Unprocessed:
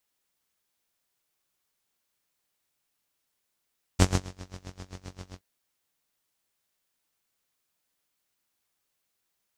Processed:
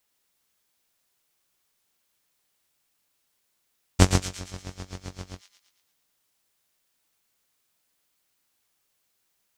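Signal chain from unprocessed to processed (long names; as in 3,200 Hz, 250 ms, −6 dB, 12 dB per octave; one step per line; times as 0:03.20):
delay with a high-pass on its return 114 ms, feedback 51%, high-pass 2,400 Hz, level −6 dB
level +4.5 dB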